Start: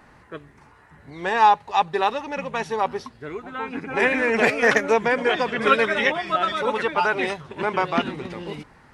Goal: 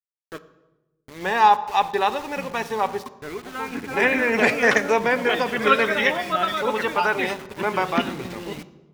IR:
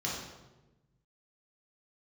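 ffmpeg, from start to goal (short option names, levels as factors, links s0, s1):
-filter_complex "[0:a]aeval=exprs='val(0)*gte(abs(val(0)),0.0141)':c=same,asplit=2[s0][s1];[1:a]atrim=start_sample=2205[s2];[s1][s2]afir=irnorm=-1:irlink=0,volume=0.133[s3];[s0][s3]amix=inputs=2:normalize=0"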